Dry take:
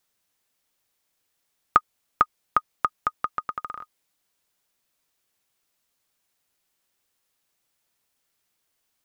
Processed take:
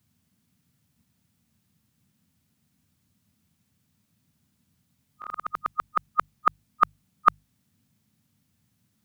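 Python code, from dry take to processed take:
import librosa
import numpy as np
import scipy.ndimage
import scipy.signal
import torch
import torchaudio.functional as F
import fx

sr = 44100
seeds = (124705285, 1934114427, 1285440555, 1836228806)

y = x[::-1].copy()
y = fx.hum_notches(y, sr, base_hz=50, count=3)
y = fx.dmg_noise_band(y, sr, seeds[0], low_hz=74.0, high_hz=240.0, level_db=-72.0)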